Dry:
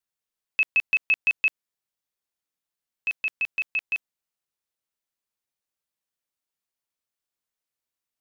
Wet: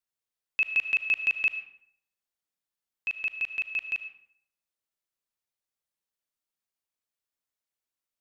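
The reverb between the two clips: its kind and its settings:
comb and all-pass reverb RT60 0.66 s, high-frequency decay 0.7×, pre-delay 35 ms, DRR 10 dB
level −3.5 dB

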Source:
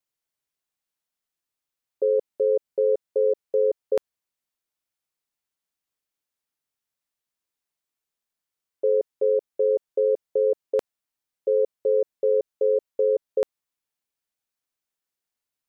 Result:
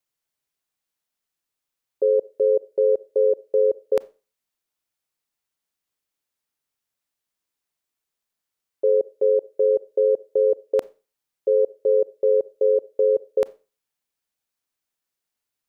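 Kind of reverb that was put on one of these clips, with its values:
four-comb reverb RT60 0.32 s, combs from 28 ms, DRR 19.5 dB
level +2.5 dB

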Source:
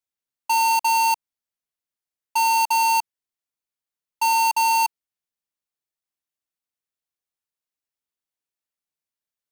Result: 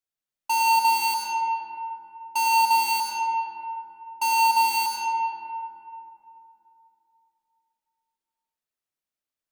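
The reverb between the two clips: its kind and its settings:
comb and all-pass reverb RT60 3.1 s, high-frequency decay 0.4×, pre-delay 55 ms, DRR −2 dB
level −3.5 dB

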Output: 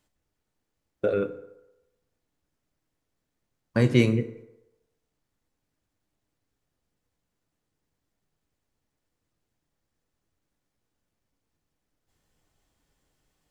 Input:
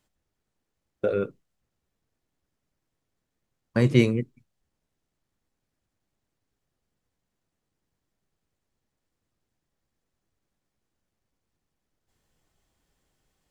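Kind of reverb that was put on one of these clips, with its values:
feedback delay network reverb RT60 0.96 s, low-frequency decay 0.7×, high-frequency decay 0.6×, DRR 9.5 dB

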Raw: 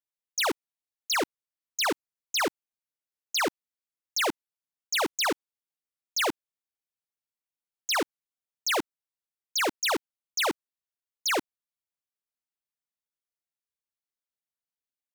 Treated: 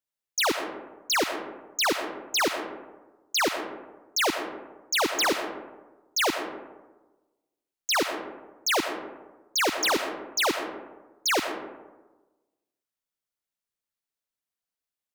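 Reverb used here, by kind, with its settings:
comb and all-pass reverb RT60 1.2 s, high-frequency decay 0.4×, pre-delay 55 ms, DRR 6.5 dB
level +2 dB

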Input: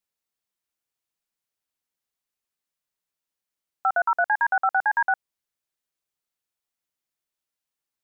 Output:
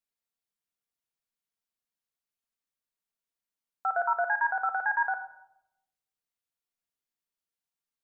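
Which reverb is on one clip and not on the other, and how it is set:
rectangular room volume 2,700 cubic metres, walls furnished, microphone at 1.7 metres
level −7 dB

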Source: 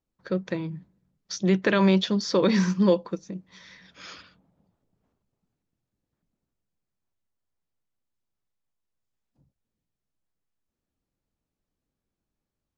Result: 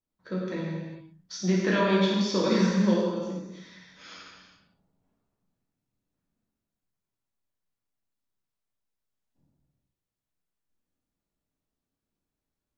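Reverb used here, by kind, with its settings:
reverb whose tail is shaped and stops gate 480 ms falling, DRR −6.5 dB
level −8.5 dB

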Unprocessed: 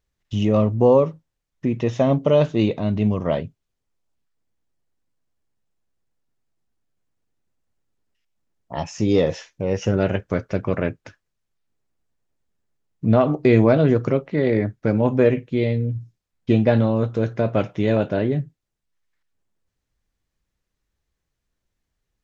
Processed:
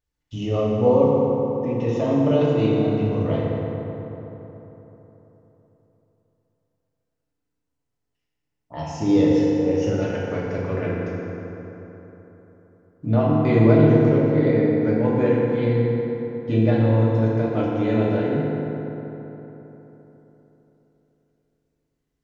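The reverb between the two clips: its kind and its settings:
feedback delay network reverb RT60 3.8 s, high-frequency decay 0.5×, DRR −6 dB
level −8.5 dB

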